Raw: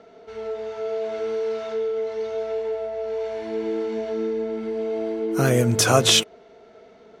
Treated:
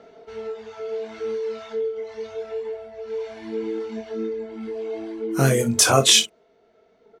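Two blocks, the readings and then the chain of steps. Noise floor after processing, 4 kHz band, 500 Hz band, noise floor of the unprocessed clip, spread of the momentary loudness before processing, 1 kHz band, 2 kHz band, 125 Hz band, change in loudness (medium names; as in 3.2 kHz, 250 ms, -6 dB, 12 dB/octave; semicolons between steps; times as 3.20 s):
-60 dBFS, +2.0 dB, -2.5 dB, -50 dBFS, 12 LU, +0.5 dB, +1.0 dB, -0.5 dB, +1.0 dB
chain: reverb removal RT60 1.9 s; dynamic bell 8.7 kHz, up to +5 dB, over -42 dBFS, Q 0.91; early reflections 22 ms -5 dB, 60 ms -14 dB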